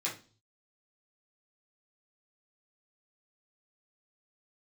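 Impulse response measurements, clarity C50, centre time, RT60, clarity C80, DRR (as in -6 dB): 9.0 dB, 23 ms, 0.35 s, 16.5 dB, -6.5 dB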